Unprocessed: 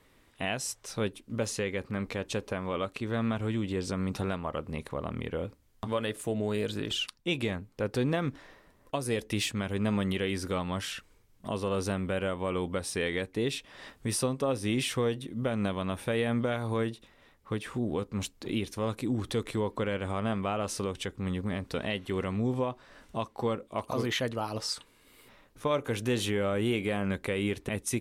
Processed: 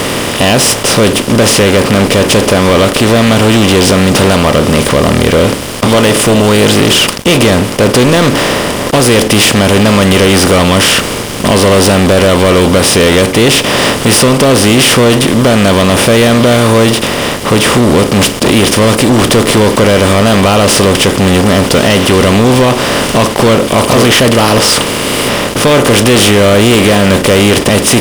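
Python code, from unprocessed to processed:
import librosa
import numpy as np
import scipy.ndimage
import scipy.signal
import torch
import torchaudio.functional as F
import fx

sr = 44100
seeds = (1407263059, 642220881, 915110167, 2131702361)

y = fx.bin_compress(x, sr, power=0.4)
y = fx.leveller(y, sr, passes=5)
y = y * librosa.db_to_amplitude(4.0)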